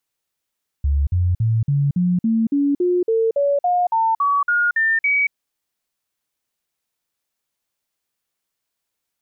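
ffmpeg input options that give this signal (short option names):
-f lavfi -i "aevalsrc='0.188*clip(min(mod(t,0.28),0.23-mod(t,0.28))/0.005,0,1)*sin(2*PI*70.9*pow(2,floor(t/0.28)/3)*mod(t,0.28))':d=4.48:s=44100"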